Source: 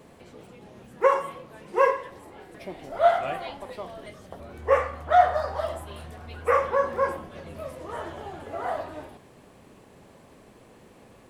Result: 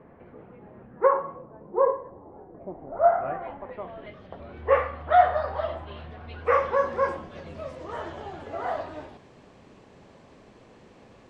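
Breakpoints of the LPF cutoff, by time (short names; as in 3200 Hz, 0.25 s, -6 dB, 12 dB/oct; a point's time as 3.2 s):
LPF 24 dB/oct
0.74 s 1900 Hz
1.7 s 1000 Hz
2.67 s 1000 Hz
3.63 s 2000 Hz
4.25 s 3700 Hz
6.22 s 3700 Hz
6.8 s 6700 Hz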